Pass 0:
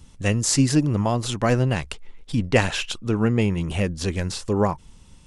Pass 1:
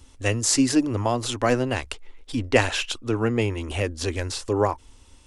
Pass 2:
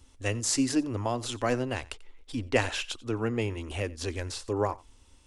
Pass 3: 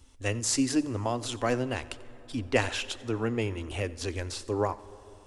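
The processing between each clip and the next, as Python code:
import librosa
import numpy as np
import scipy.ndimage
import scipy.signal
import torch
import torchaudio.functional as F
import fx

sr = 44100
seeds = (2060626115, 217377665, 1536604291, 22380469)

y1 = fx.curve_eq(x, sr, hz=(110.0, 170.0, 250.0), db=(0, -22, 3))
y1 = y1 * 10.0 ** (-2.5 / 20.0)
y2 = y1 + 10.0 ** (-22.0 / 20.0) * np.pad(y1, (int(90 * sr / 1000.0), 0))[:len(y1)]
y2 = y2 * 10.0 ** (-6.5 / 20.0)
y3 = fx.rev_plate(y2, sr, seeds[0], rt60_s=4.0, hf_ratio=0.45, predelay_ms=0, drr_db=17.5)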